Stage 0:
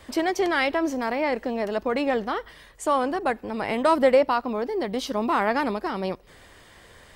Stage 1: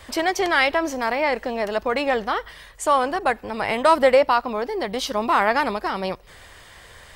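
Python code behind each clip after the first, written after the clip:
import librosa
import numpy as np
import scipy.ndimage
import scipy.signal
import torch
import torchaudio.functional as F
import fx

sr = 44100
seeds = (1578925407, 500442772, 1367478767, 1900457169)

y = fx.peak_eq(x, sr, hz=270.0, db=-8.5, octaves=1.7)
y = y * librosa.db_to_amplitude(6.0)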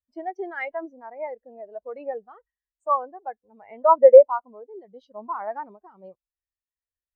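y = fx.spectral_expand(x, sr, expansion=2.5)
y = y * librosa.db_to_amplitude(3.5)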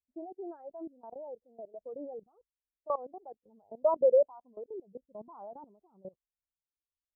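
y = fx.level_steps(x, sr, step_db=21)
y = scipy.ndimage.gaussian_filter1d(y, 12.0, mode='constant')
y = y * librosa.db_to_amplitude(4.5)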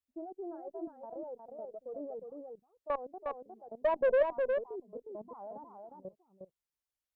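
y = fx.tube_stage(x, sr, drive_db=22.0, bias=0.2)
y = y + 10.0 ** (-4.5 / 20.0) * np.pad(y, (int(359 * sr / 1000.0), 0))[:len(y)]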